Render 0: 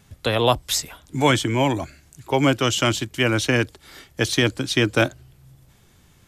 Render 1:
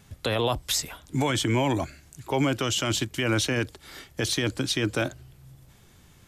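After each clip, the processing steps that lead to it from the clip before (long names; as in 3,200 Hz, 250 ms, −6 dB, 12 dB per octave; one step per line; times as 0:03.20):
brickwall limiter −15.5 dBFS, peak gain reduction 10.5 dB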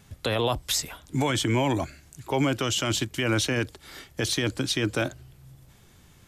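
no processing that can be heard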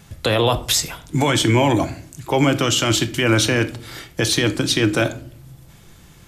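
rectangular room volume 570 cubic metres, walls furnished, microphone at 0.77 metres
level +7.5 dB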